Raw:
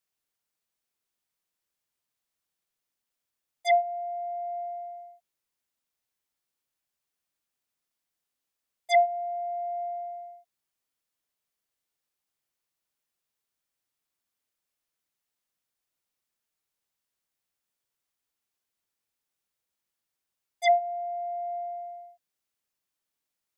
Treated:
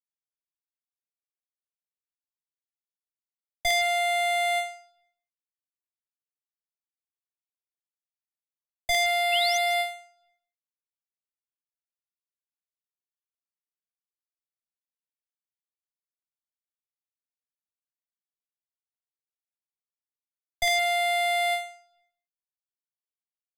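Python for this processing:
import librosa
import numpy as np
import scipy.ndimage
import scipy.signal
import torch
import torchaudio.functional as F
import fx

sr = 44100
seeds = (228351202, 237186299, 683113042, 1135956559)

y = fx.fuzz(x, sr, gain_db=42.0, gate_db=-51.0)
y = fx.peak_eq(y, sr, hz=710.0, db=-15.0, octaves=1.8)
y = fx.spec_paint(y, sr, seeds[0], shape='rise', start_s=9.32, length_s=0.26, low_hz=2600.0, high_hz=6600.0, level_db=-26.0)
y = fx.high_shelf(y, sr, hz=5500.0, db=-12.0)
y = fx.notch(y, sr, hz=5600.0, q=12.0)
y = y + 10.0 ** (-17.5 / 20.0) * np.pad(y, (int(163 * sr / 1000.0), 0))[:len(y)]
y = fx.end_taper(y, sr, db_per_s=120.0)
y = y * librosa.db_to_amplitude(2.0)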